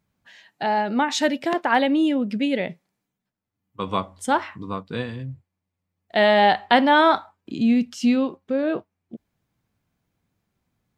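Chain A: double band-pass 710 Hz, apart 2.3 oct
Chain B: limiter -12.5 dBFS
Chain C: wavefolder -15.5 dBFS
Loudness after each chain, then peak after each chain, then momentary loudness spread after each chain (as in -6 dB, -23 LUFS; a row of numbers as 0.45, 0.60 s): -29.5, -24.0, -24.0 LUFS; -13.0, -12.5, -15.5 dBFS; 19, 12, 12 LU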